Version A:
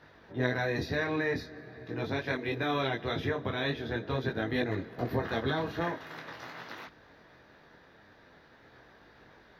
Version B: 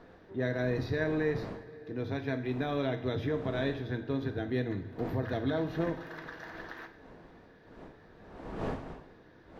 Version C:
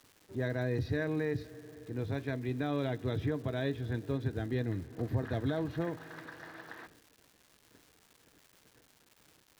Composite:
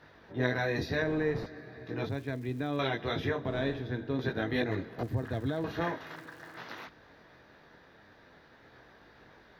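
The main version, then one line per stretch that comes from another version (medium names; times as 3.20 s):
A
1.02–1.46 s: from B
2.09–2.79 s: from C
3.46–4.19 s: from B
5.03–5.64 s: from C
6.16–6.57 s: from C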